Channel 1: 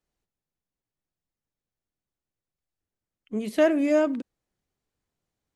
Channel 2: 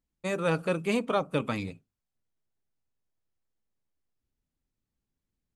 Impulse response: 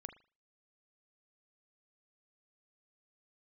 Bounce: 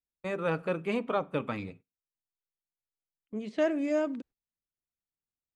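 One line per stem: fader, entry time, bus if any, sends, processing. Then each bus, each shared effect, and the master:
-7.0 dB, 0.00 s, no send, steep low-pass 8.8 kHz 36 dB/octave; level-controlled noise filter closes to 2.3 kHz, open at -19.5 dBFS
-4.0 dB, 0.00 s, send -6.5 dB, tone controls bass -3 dB, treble -14 dB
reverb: on, pre-delay 38 ms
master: gate -52 dBFS, range -16 dB

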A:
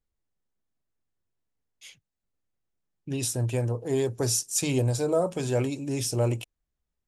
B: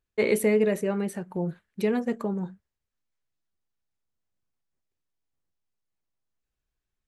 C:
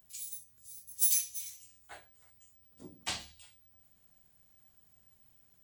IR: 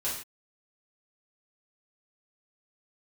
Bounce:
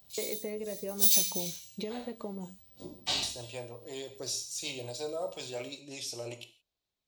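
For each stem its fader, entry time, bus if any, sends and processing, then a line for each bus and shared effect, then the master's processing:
-3.0 dB, 0.00 s, bus A, send -11.5 dB, high-pass 1.5 kHz 6 dB/octave; rotary cabinet horn 5.5 Hz
-0.5 dB, 0.00 s, bus A, no send, high-pass 160 Hz 6 dB/octave
+0.5 dB, 0.00 s, no bus, send -3.5 dB, auto duck -14 dB, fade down 0.25 s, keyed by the first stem
bus A: 0.0 dB, compression 12:1, threshold -36 dBFS, peak gain reduction 17 dB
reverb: on, pre-delay 3 ms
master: fifteen-band graphic EQ 630 Hz +5 dB, 1.6 kHz -7 dB, 4 kHz +9 dB, 10 kHz -8 dB

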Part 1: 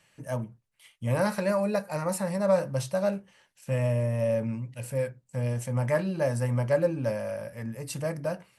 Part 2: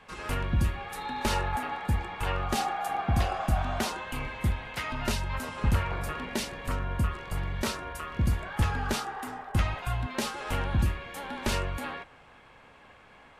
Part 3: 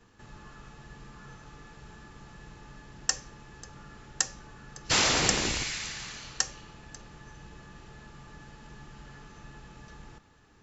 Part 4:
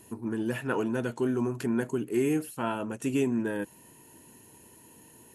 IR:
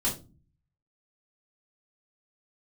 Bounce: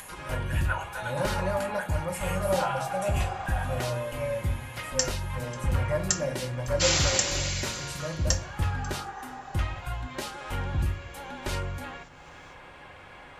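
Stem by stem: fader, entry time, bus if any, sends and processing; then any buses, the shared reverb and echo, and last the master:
-6.0 dB, 0.00 s, send -13.5 dB, none
-3.0 dB, 0.00 s, send -18.5 dB, none
-4.5 dB, 1.90 s, send -14 dB, tilt EQ +2 dB/octave
0.0 dB, 0.00 s, send -8.5 dB, elliptic high-pass 620 Hz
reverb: on, RT60 0.30 s, pre-delay 3 ms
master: upward compressor, threshold -35 dBFS; comb of notches 220 Hz

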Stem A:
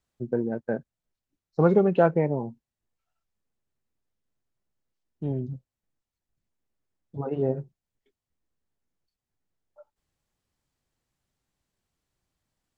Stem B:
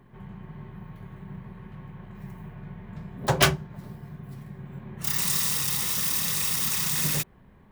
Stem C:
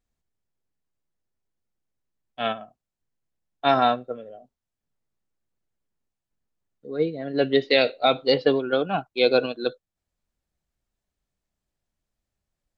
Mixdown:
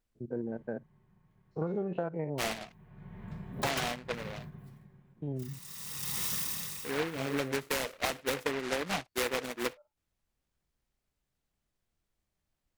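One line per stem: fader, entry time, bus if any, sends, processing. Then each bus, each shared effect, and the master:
-7.0 dB, 0.00 s, no send, spectrogram pixelated in time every 50 ms
-3.5 dB, 0.35 s, no send, endings held to a fixed fall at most 260 dB/s; auto duck -21 dB, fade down 0.75 s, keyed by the first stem
-1.5 dB, 0.00 s, no send, delay time shaken by noise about 1.5 kHz, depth 0.22 ms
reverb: none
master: compression 10:1, threshold -29 dBFS, peak gain reduction 14.5 dB

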